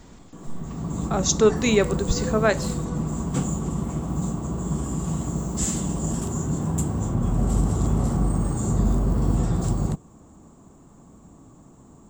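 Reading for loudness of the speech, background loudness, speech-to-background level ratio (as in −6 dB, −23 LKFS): −22.5 LKFS, −26.0 LKFS, 3.5 dB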